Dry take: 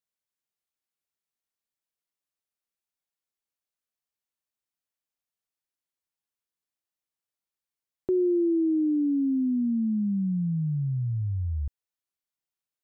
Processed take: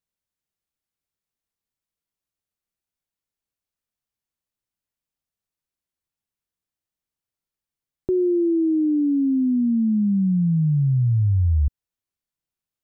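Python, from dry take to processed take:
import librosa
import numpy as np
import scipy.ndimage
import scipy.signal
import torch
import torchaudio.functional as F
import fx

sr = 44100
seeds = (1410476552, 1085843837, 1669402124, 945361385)

y = fx.low_shelf(x, sr, hz=230.0, db=12.0)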